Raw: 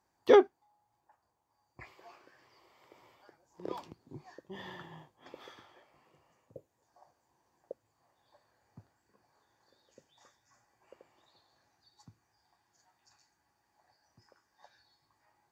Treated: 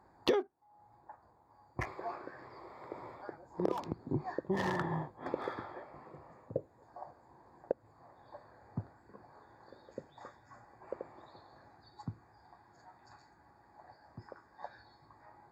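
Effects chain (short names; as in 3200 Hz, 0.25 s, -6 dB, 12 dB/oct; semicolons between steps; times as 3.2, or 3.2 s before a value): Wiener smoothing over 15 samples; compressor 16:1, threshold -44 dBFS, peak gain reduction 28.5 dB; gain +16 dB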